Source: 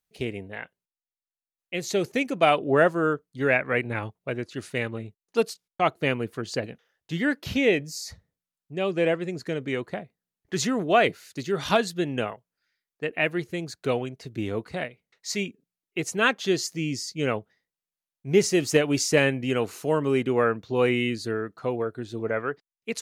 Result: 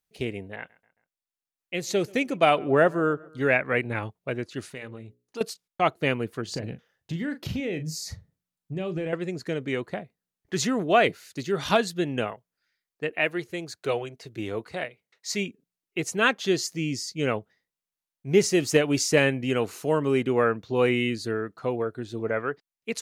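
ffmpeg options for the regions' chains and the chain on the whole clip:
ffmpeg -i in.wav -filter_complex "[0:a]asettb=1/sr,asplit=3[link_01][link_02][link_03];[link_01]atrim=end=0.564[link_04];[link_02]atrim=start=0.56:end=3.5,asetpts=PTS-STARTPTS,afade=type=in:duration=0.004:curve=qsin,afade=type=out:start_time=2.936:duration=0.004:curve=qsin,asplit=2[link_05][link_06];[link_06]adelay=135,lowpass=frequency=3000:poles=1,volume=-24dB,asplit=2[link_07][link_08];[link_08]adelay=135,lowpass=frequency=3000:poles=1,volume=0.53,asplit=2[link_09][link_10];[link_10]adelay=135,lowpass=frequency=3000:poles=1,volume=0.53[link_11];[link_05][link_07][link_09][link_11]amix=inputs=4:normalize=0,atrim=end_sample=129654,adynamicequalizer=threshold=0.0251:dfrequency=1500:dqfactor=0.7:tfrequency=1500:tqfactor=0.7:attack=5:release=100:ratio=0.375:range=2:mode=cutabove:tftype=highshelf[link_12];[link_03]atrim=start=3.496[link_13];[link_04][link_12]acrossfade=duration=0.004:curve1=hsin:curve2=qsin[link_14];[link_14][link_13]acrossfade=duration=0.004:curve1=qsin:curve2=hsin,asettb=1/sr,asplit=3[link_15][link_16][link_17];[link_15]atrim=end=4.654[link_18];[link_16]atrim=start=4.65:end=5.41,asetpts=PTS-STARTPTS,afade=type=in:duration=0.004:curve=qsin,afade=type=out:start_time=0.756:duration=0.004:curve=qsin,bandreject=frequency=60:width_type=h:width=6,bandreject=frequency=120:width_type=h:width=6,bandreject=frequency=180:width_type=h:width=6,bandreject=frequency=240:width_type=h:width=6,bandreject=frequency=300:width_type=h:width=6,bandreject=frequency=360:width_type=h:width=6,bandreject=frequency=420:width_type=h:width=6,bandreject=frequency=480:width_type=h:width=6,bandreject=frequency=540:width_type=h:width=6,acompressor=threshold=-41dB:ratio=2:attack=3.2:release=140:knee=1:detection=peak[link_19];[link_17]atrim=start=5.406[link_20];[link_18][link_19]acrossfade=duration=0.004:curve1=hsin:curve2=qsin[link_21];[link_21][link_20]acrossfade=duration=0.004:curve1=qsin:curve2=hsin,asettb=1/sr,asplit=3[link_22][link_23][link_24];[link_22]atrim=end=6.484[link_25];[link_23]atrim=start=6.48:end=9.13,asetpts=PTS-STARTPTS,afade=type=in:duration=0.004:curve=qsin,afade=type=out:start_time=2.646:duration=0.004:curve=qsin,equalizer=frequency=120:width=0.5:gain=9.5,acompressor=threshold=-28dB:ratio=5:attack=3.2:release=140:knee=1:detection=peak,asplit=2[link_26][link_27];[link_27]adelay=38,volume=-11dB[link_28];[link_26][link_28]amix=inputs=2:normalize=0,atrim=end_sample=116865[link_29];[link_24]atrim=start=9.126[link_30];[link_25][link_29]acrossfade=duration=0.004:curve1=hsin:curve2=qsin[link_31];[link_31][link_30]acrossfade=duration=0.004:curve1=qsin:curve2=hsin,asettb=1/sr,asplit=3[link_32][link_33][link_34];[link_32]atrim=end=13.094[link_35];[link_33]atrim=start=13.09:end=15.29,asetpts=PTS-STARTPTS,afade=type=in:duration=0.004:curve=qsin,afade=type=out:start_time=2.196:duration=0.004:curve=qsin,highpass=90,equalizer=frequency=170:width=1:gain=-5.5,bandreject=frequency=250:width=7.7[link_36];[link_34]atrim=start=15.286[link_37];[link_35][link_36]acrossfade=duration=0.004:curve1=hsin:curve2=qsin[link_38];[link_38][link_37]acrossfade=duration=0.004:curve1=qsin:curve2=hsin" out.wav

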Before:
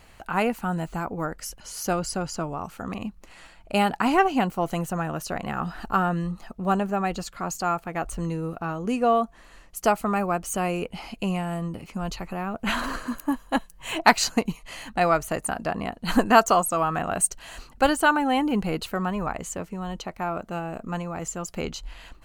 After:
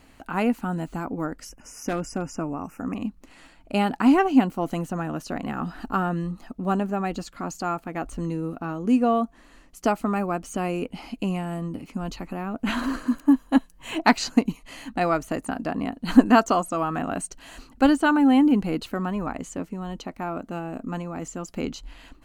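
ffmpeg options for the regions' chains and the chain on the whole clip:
ffmpeg -i in.wav -filter_complex "[0:a]asettb=1/sr,asplit=3[link_01][link_02][link_03];[link_01]atrim=end=1.494[link_04];[link_02]atrim=start=1.49:end=2.96,asetpts=PTS-STARTPTS,afade=type=in:duration=0.004:curve=qsin,afade=type=out:start_time=1.466:duration=0.004:curve=qsin,asuperstop=centerf=3800:order=20:qfactor=1.8,aeval=exprs='0.126*(abs(mod(val(0)/0.126+3,4)-2)-1)':channel_layout=same[link_05];[link_03]atrim=start=2.956[link_06];[link_04][link_05]acrossfade=duration=0.004:curve1=hsin:curve2=qsin[link_07];[link_07][link_06]acrossfade=duration=0.004:curve1=qsin:curve2=hsin,acrossover=split=7200[link_08][link_09];[link_09]acompressor=threshold=-45dB:ratio=4:attack=1:release=60[link_10];[link_08][link_10]amix=inputs=2:normalize=0,equalizer=frequency=270:width=2.6:gain=13,volume=-3dB" out.wav

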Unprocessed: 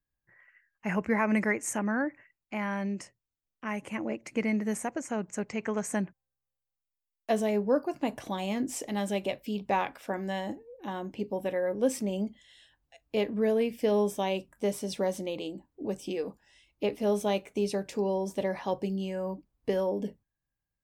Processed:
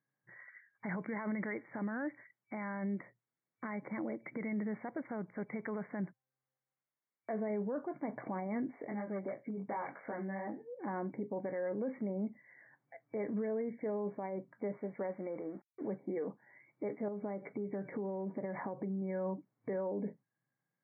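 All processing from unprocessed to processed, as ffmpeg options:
ffmpeg -i in.wav -filter_complex "[0:a]asettb=1/sr,asplit=3[link_01][link_02][link_03];[link_01]atrim=end=8.714[link_04];[link_02]atrim=start=8.71:end=10.79,asetpts=PTS-STARTPTS,afade=type=in:duration=0.004:curve=qsin,afade=type=out:start_time=2.076:duration=0.004:curve=qsin,flanger=delay=18:depth=3.5:speed=2.8,asoftclip=type=hard:threshold=-28dB,acompressor=threshold=-37dB:ratio=4:attack=3.2:release=140:knee=1:detection=peak[link_05];[link_03]atrim=start=10.786[link_06];[link_04][link_05]acrossfade=duration=0.004:curve1=hsin:curve2=qsin[link_07];[link_07][link_06]acrossfade=duration=0.004:curve1=qsin:curve2=hsin,asettb=1/sr,asplit=3[link_08][link_09][link_10];[link_08]atrim=end=14.774[link_11];[link_09]atrim=start=14.77:end=15.88,asetpts=PTS-STARTPTS,afade=type=in:duration=0.004:curve=qsin,afade=type=out:start_time=1.106:duration=0.004:curve=qsin,lowshelf=frequency=320:gain=-7.5,aeval=exprs='sgn(val(0))*max(abs(val(0))-0.00112,0)':channel_layout=same[link_12];[link_10]atrim=start=15.876[link_13];[link_11][link_12]acrossfade=duration=0.004:curve1=hsin:curve2=qsin[link_14];[link_14][link_13]acrossfade=duration=0.004:curve1=qsin:curve2=hsin,asettb=1/sr,asplit=3[link_15][link_16][link_17];[link_15]atrim=end=17.084[link_18];[link_16]atrim=start=17.08:end=19.02,asetpts=PTS-STARTPTS,afade=type=in:duration=0.004:curve=qsin,afade=type=out:start_time=1.936:duration=0.004:curve=qsin,acompressor=threshold=-37dB:ratio=12:attack=3.2:release=140:knee=1:detection=peak,lowshelf=frequency=360:gain=6[link_19];[link_17]atrim=start=19.016[link_20];[link_18][link_19]acrossfade=duration=0.004:curve1=hsin:curve2=qsin[link_21];[link_21][link_20]acrossfade=duration=0.004:curve1=qsin:curve2=hsin,acompressor=threshold=-50dB:ratio=1.5,alimiter=level_in=11dB:limit=-24dB:level=0:latency=1:release=13,volume=-11dB,afftfilt=real='re*between(b*sr/4096,110,2300)':imag='im*between(b*sr/4096,110,2300)':win_size=4096:overlap=0.75,volume=5dB" out.wav

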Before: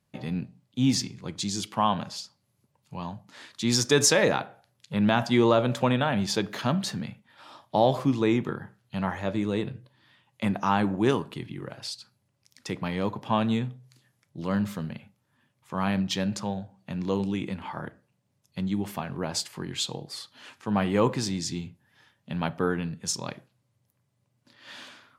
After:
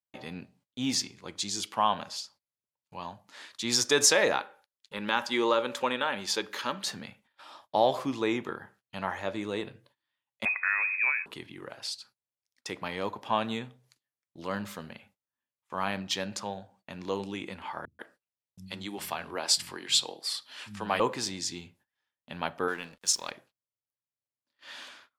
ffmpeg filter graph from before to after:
ffmpeg -i in.wav -filter_complex "[0:a]asettb=1/sr,asplit=3[link_01][link_02][link_03];[link_01]atrim=end=4.394[link_04];[link_02]atrim=start=4.39:end=6.87,asetpts=PTS-STARTPTS,afade=type=in:duration=0.004:curve=qsin,afade=type=out:start_time=2.476:duration=0.004:curve=qsin,asuperstop=centerf=690:order=4:qfactor=4.1,equalizer=frequency=120:width=1.1:gain=-12[link_05];[link_03]atrim=start=6.866[link_06];[link_04][link_05]acrossfade=duration=0.004:curve1=hsin:curve2=qsin[link_07];[link_07][link_06]acrossfade=duration=0.004:curve1=qsin:curve2=hsin,asettb=1/sr,asplit=3[link_08][link_09][link_10];[link_08]atrim=end=10.454[link_11];[link_09]atrim=start=10.45:end=11.26,asetpts=PTS-STARTPTS,afade=type=in:duration=0.004:curve=qsin,afade=type=out:start_time=0.806:duration=0.004:curve=qsin,lowpass=frequency=2300:width_type=q:width=0.5098,lowpass=frequency=2300:width_type=q:width=0.6013,lowpass=frequency=2300:width_type=q:width=0.9,lowpass=frequency=2300:width_type=q:width=2.563,afreqshift=-2700,acrossover=split=310|2000[link_12][link_13][link_14];[link_12]acompressor=threshold=-57dB:ratio=4[link_15];[link_13]acompressor=threshold=-27dB:ratio=4[link_16];[link_14]acompressor=threshold=-31dB:ratio=4[link_17];[link_15][link_16][link_17]amix=inputs=3:normalize=0[link_18];[link_10]atrim=start=11.256[link_19];[link_11][link_18]acrossfade=duration=0.004:curve1=hsin:curve2=qsin[link_20];[link_20][link_19]acrossfade=duration=0.004:curve1=qsin:curve2=hsin,asettb=1/sr,asplit=3[link_21][link_22][link_23];[link_21]atrim=end=17.854[link_24];[link_22]atrim=start=17.85:end=21,asetpts=PTS-STARTPTS,afade=type=in:duration=0.004:curve=qsin,afade=type=out:start_time=3.146:duration=0.004:curve=qsin,equalizer=frequency=6300:width=0.33:gain=6.5,bandreject=frequency=6500:width=10,acrossover=split=180[link_25][link_26];[link_26]adelay=140[link_27];[link_25][link_27]amix=inputs=2:normalize=0,atrim=end_sample=138915[link_28];[link_23]atrim=start=20.996[link_29];[link_24][link_28]acrossfade=duration=0.004:curve1=hsin:curve2=qsin[link_30];[link_30][link_29]acrossfade=duration=0.004:curve1=qsin:curve2=hsin,asettb=1/sr,asplit=3[link_31][link_32][link_33];[link_31]atrim=end=22.684[link_34];[link_32]atrim=start=22.68:end=23.31,asetpts=PTS-STARTPTS,afade=type=in:duration=0.004:curve=qsin,afade=type=out:start_time=0.626:duration=0.004:curve=qsin,highpass=120,tiltshelf=frequency=890:gain=-4,aeval=exprs='sgn(val(0))*max(abs(val(0))-0.00335,0)':channel_layout=same[link_35];[link_33]atrim=start=23.306[link_36];[link_34][link_35]acrossfade=duration=0.004:curve1=hsin:curve2=qsin[link_37];[link_37][link_36]acrossfade=duration=0.004:curve1=qsin:curve2=hsin,agate=range=-24dB:threshold=-54dB:ratio=16:detection=peak,equalizer=frequency=140:width_type=o:width=1.9:gain=-15" out.wav

